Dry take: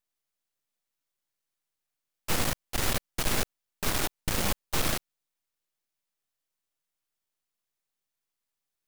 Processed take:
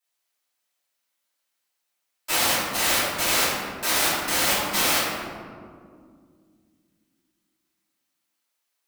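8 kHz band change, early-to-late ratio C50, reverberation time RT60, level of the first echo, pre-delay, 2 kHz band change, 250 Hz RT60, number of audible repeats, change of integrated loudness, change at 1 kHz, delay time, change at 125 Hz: +9.0 dB, -1.5 dB, 2.1 s, no echo, 3 ms, +10.0 dB, 3.5 s, no echo, +8.5 dB, +9.5 dB, no echo, -4.5 dB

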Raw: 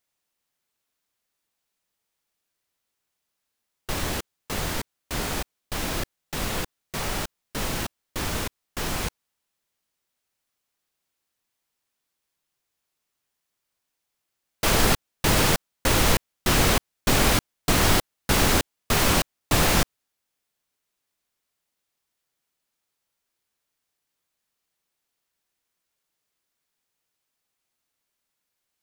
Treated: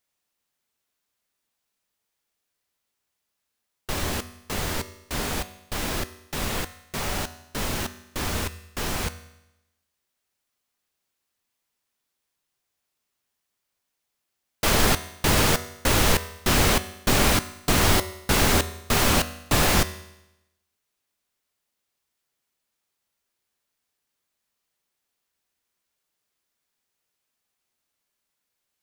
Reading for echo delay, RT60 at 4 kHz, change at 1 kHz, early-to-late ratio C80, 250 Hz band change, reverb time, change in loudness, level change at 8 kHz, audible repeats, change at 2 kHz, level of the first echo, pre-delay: no echo, 0.90 s, +0.5 dB, 16.5 dB, 0.0 dB, 0.90 s, +0.5 dB, +0.5 dB, no echo, +0.5 dB, no echo, 5 ms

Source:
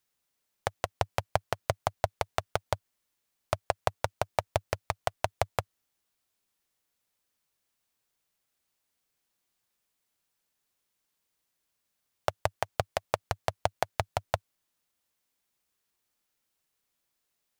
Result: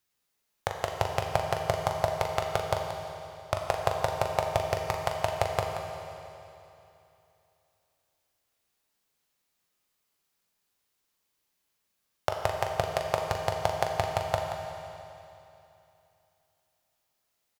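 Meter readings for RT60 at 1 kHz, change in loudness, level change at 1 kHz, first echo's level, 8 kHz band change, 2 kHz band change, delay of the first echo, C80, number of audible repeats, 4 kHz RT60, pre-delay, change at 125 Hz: 2.9 s, +3.0 dB, +3.0 dB, -8.0 dB, +2.0 dB, +2.0 dB, 41 ms, 3.5 dB, 2, 2.8 s, 13 ms, +2.5 dB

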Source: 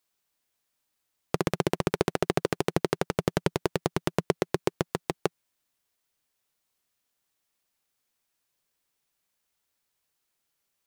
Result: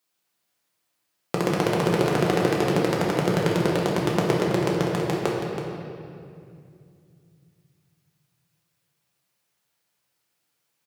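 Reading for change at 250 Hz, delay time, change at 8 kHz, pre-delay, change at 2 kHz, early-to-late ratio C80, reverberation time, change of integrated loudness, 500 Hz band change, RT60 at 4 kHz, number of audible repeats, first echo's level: +7.5 dB, 326 ms, +3.5 dB, 6 ms, +6.0 dB, 0.5 dB, 2.4 s, +6.0 dB, +6.0 dB, 1.8 s, 1, -9.0 dB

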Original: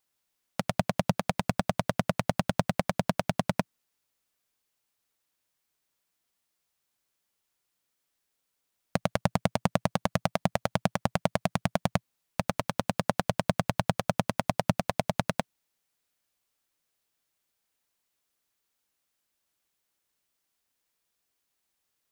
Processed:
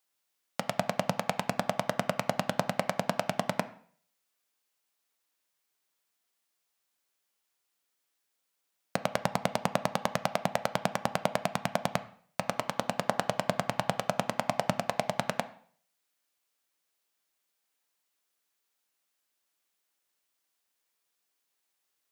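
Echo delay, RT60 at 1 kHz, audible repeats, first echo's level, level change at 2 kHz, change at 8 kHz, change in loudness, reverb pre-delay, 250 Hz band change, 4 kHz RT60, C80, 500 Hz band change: no echo, 0.50 s, no echo, no echo, 0.0 dB, 0.0 dB, -2.0 dB, 5 ms, -5.5 dB, 0.50 s, 19.0 dB, -0.5 dB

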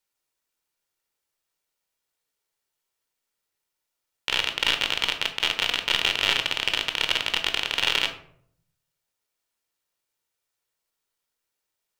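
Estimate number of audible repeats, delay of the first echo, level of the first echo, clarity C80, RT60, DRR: no echo, no echo, no echo, 14.0 dB, 0.65 s, 6.0 dB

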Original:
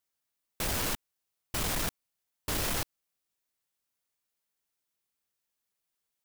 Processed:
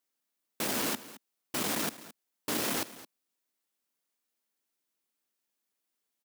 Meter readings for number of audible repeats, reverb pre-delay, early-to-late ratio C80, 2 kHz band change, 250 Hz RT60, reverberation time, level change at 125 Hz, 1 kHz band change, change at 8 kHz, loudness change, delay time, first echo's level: 1, no reverb, no reverb, 0.0 dB, no reverb, no reverb, -8.0 dB, +0.5 dB, 0.0 dB, 0.0 dB, 218 ms, -17.0 dB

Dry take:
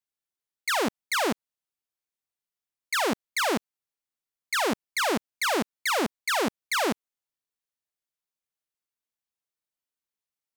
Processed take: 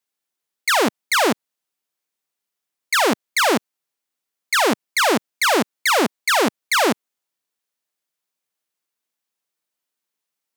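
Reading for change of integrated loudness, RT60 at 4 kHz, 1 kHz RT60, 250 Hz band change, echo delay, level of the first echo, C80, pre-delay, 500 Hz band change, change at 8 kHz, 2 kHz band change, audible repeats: +8.5 dB, no reverb, no reverb, +7.5 dB, no echo, no echo, no reverb, no reverb, +8.5 dB, +8.5 dB, +8.5 dB, no echo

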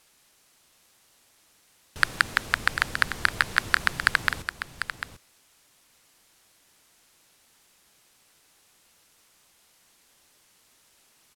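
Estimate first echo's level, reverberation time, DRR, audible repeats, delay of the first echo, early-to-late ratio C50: -9.5 dB, no reverb, no reverb, 1, 746 ms, no reverb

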